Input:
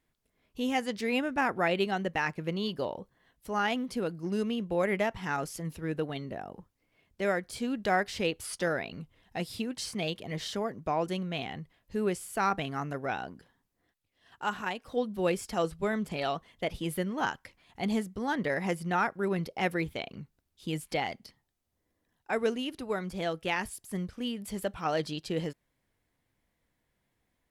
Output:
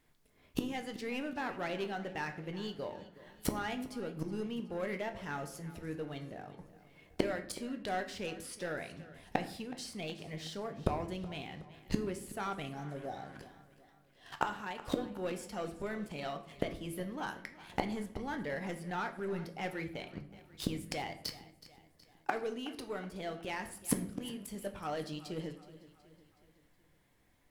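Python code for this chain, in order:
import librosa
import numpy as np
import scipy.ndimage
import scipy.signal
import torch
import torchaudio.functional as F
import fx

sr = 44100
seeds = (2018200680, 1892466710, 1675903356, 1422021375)

y = fx.spec_repair(x, sr, seeds[0], start_s=12.76, length_s=0.58, low_hz=850.0, high_hz=3500.0, source='before')
y = fx.leveller(y, sr, passes=2)
y = fx.gate_flip(y, sr, shuts_db=-26.0, range_db=-25)
y = fx.echo_feedback(y, sr, ms=371, feedback_pct=49, wet_db=-17.5)
y = fx.room_shoebox(y, sr, seeds[1], volume_m3=110.0, walls='mixed', distance_m=0.36)
y = y * 10.0 ** (9.5 / 20.0)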